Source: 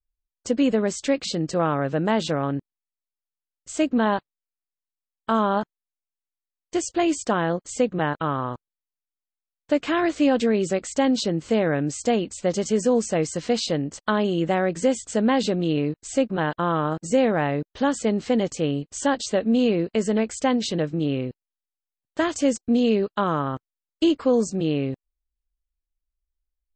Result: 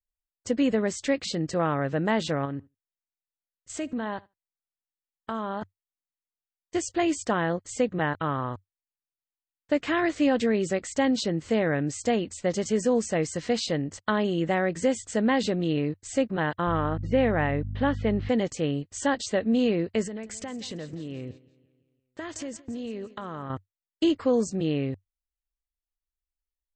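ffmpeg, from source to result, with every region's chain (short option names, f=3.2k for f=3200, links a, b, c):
-filter_complex "[0:a]asettb=1/sr,asplit=3[a][b][c];[a]atrim=end=2.454[d];[b]atrim=start=2.45:end=5.62,asetpts=PTS-STARTPTS,afade=t=in:d=0.004:c=qsin,afade=t=out:st=3.166:d=0.004:c=qsin,acompressor=threshold=-27dB:ratio=2.5:attack=3.2:release=140:knee=1:detection=peak,aecho=1:1:75|150:0.0668|0.014,atrim=end_sample=139797[e];[c]atrim=start=5.616[f];[d][e]acrossfade=d=0.004:c1=hsin:c2=qsin[g];[g][f]acrossfade=d=0.004:c1=qsin:c2=hsin,asettb=1/sr,asplit=3[h][i][j];[h]atrim=end=16.674[k];[i]atrim=start=16.67:end=18.29,asetpts=PTS-STARTPTS,afade=t=in:d=0.004:c=qsin,afade=t=out:st=1.616:d=0.004:c=qsin,lowpass=f=3.6k:w=0.5412,lowpass=f=3.6k:w=1.3066,aeval=exprs='val(0)+0.0251*(sin(2*PI*50*n/s)+sin(2*PI*2*50*n/s)/2+sin(2*PI*3*50*n/s)/3+sin(2*PI*4*50*n/s)/4+sin(2*PI*5*50*n/s)/5)':c=same[l];[j]atrim=start=18.286[m];[k][l]acrossfade=d=0.004:c1=hsin:c2=qsin[n];[n][m]acrossfade=d=0.004:c1=qsin:c2=hsin,asettb=1/sr,asplit=3[o][p][q];[o]atrim=end=20.064[r];[p]atrim=start=20.06:end=23.5,asetpts=PTS-STARTPTS,afade=t=in:d=0.004:c=qsin,afade=t=out:st=3.436:d=0.004:c=qsin,acompressor=threshold=-30dB:ratio=5:attack=3.2:release=140:knee=1:detection=peak,aecho=1:1:171|342|513|684|855:0.158|0.0888|0.0497|0.0278|0.0156,atrim=end_sample=151704[s];[q]atrim=start=23.496[t];[r][s]acrossfade=d=0.004:c1=hsin:c2=qsin[u];[u][t]acrossfade=d=0.004:c1=qsin:c2=hsin,equalizer=f=95:t=o:w=0.43:g=11,agate=range=-7dB:threshold=-40dB:ratio=16:detection=peak,equalizer=f=1.9k:t=o:w=0.28:g=6.5,volume=-3.5dB"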